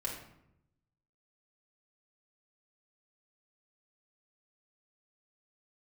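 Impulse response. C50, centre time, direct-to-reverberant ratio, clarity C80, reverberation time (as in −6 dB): 4.5 dB, 33 ms, −3.5 dB, 8.0 dB, 0.80 s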